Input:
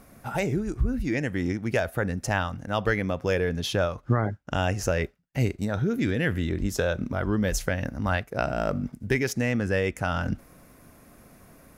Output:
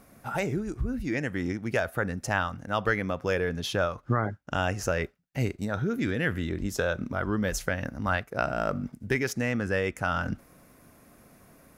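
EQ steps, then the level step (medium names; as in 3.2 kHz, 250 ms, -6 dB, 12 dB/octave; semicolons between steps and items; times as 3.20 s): bass shelf 64 Hz -6.5 dB; dynamic bell 1.3 kHz, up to +5 dB, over -43 dBFS, Q 1.9; -2.5 dB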